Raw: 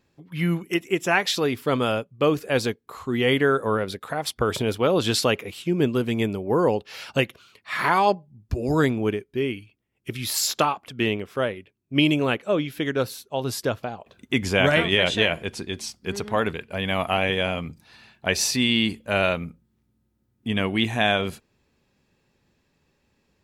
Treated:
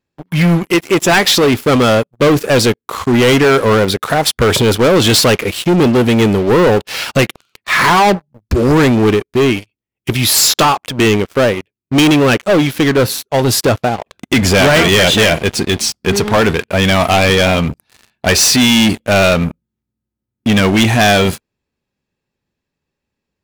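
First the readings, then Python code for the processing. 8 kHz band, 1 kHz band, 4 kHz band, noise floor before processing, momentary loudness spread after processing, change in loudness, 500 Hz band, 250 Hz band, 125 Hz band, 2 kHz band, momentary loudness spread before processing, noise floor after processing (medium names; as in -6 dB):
+15.0 dB, +11.5 dB, +12.0 dB, -70 dBFS, 8 LU, +12.0 dB, +11.5 dB, +12.5 dB, +13.5 dB, +11.0 dB, 11 LU, -80 dBFS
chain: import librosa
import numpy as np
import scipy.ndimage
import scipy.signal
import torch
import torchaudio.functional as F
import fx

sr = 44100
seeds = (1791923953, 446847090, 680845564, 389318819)

y = fx.leveller(x, sr, passes=5)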